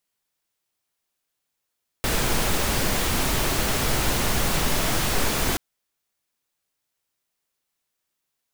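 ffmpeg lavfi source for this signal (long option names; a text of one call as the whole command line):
ffmpeg -f lavfi -i "anoisesrc=color=pink:amplitude=0.385:duration=3.53:sample_rate=44100:seed=1" out.wav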